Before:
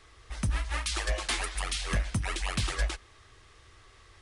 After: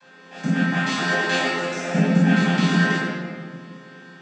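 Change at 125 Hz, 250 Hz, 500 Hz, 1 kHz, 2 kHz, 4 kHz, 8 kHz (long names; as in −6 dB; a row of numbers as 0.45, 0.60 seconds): +11.0, +22.0, +15.0, +11.5, +13.5, +6.0, −0.5 decibels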